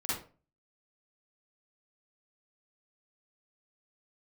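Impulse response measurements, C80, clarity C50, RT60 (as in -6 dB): 7.0 dB, -2.0 dB, 0.35 s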